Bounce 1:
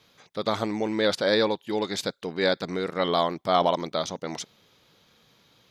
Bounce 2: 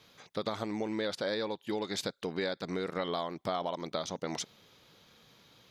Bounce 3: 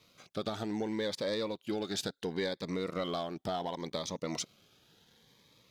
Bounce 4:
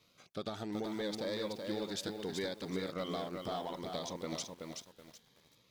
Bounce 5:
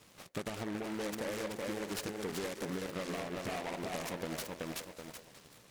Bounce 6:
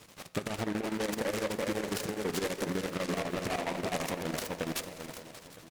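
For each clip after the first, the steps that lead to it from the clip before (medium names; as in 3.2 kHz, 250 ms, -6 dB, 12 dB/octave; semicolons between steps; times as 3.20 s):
compression 6:1, threshold -31 dBFS, peak gain reduction 14 dB
waveshaping leveller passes 1; Shepard-style phaser rising 0.7 Hz; trim -2.5 dB
bit-crushed delay 377 ms, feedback 35%, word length 9-bit, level -4.5 dB; trim -4.5 dB
compression 5:1, threshold -45 dBFS, peak gain reduction 11.5 dB; repeats whose band climbs or falls 195 ms, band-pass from 530 Hz, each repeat 1.4 oct, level -8.5 dB; delay time shaken by noise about 1.3 kHz, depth 0.12 ms; trim +8.5 dB
square tremolo 12 Hz, depth 65%, duty 70%; delay 963 ms -19 dB; on a send at -14.5 dB: reverberation RT60 2.2 s, pre-delay 11 ms; on the sum: trim +6.5 dB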